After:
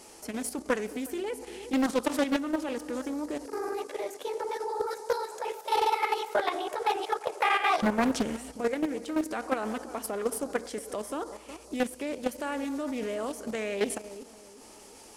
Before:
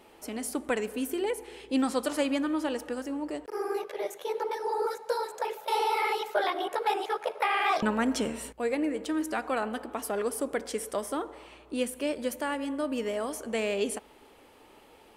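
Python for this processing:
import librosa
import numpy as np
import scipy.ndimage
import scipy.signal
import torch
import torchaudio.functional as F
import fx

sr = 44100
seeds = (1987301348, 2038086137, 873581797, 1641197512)

y = fx.dmg_noise_band(x, sr, seeds[0], low_hz=4400.0, high_hz=11000.0, level_db=-56.0)
y = fx.echo_filtered(y, sr, ms=364, feedback_pct=44, hz=950.0, wet_db=-14.5)
y = fx.level_steps(y, sr, step_db=9)
y = fx.doppler_dist(y, sr, depth_ms=0.57)
y = F.gain(torch.from_numpy(y), 3.5).numpy()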